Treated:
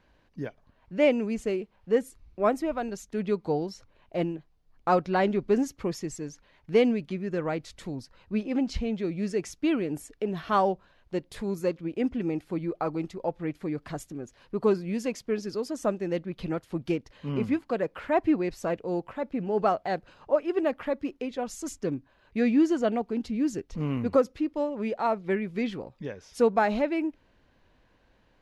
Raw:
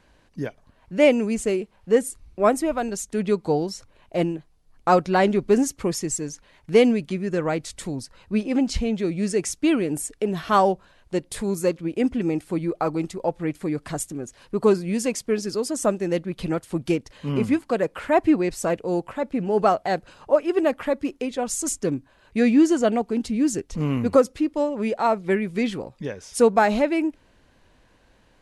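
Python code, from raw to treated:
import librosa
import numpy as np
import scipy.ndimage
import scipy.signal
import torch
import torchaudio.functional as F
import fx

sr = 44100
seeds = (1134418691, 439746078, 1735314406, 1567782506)

y = fx.peak_eq(x, sr, hz=8900.0, db=-13.5, octaves=0.86)
y = F.gain(torch.from_numpy(y), -5.5).numpy()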